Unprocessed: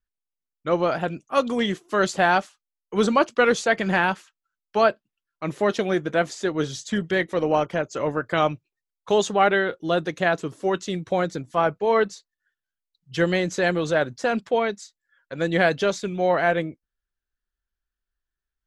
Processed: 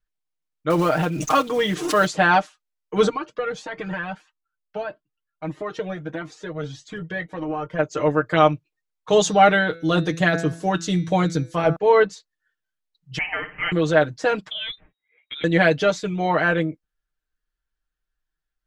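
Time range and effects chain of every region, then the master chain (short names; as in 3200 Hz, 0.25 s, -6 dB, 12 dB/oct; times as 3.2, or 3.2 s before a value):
0.7–2.08 block floating point 5-bit + backwards sustainer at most 68 dB/s
3.09–7.79 high shelf 3600 Hz -9 dB + compressor, threshold -21 dBFS + cascading flanger rising 1.6 Hz
9.12–11.76 tone controls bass +6 dB, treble +8 dB + de-hum 166.9 Hz, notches 36
13.18–13.72 steep high-pass 810 Hz 72 dB/oct + flutter echo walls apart 9.5 m, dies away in 0.33 s + inverted band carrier 3800 Hz
14.5–15.44 compressor 3:1, threshold -32 dBFS + inverted band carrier 3800 Hz
whole clip: high shelf 7500 Hz -8.5 dB; comb 6.5 ms, depth 82%; gain +1 dB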